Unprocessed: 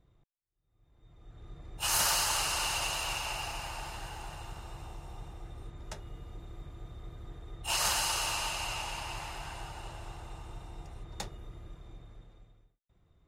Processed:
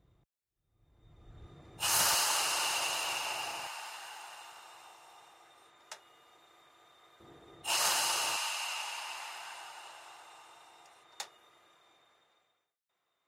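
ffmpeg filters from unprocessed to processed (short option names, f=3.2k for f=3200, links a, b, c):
-af "asetnsamples=n=441:p=0,asendcmd='1.46 highpass f 130;2.14 highpass f 290;3.67 highpass f 860;7.2 highpass f 260;8.36 highpass f 860',highpass=46"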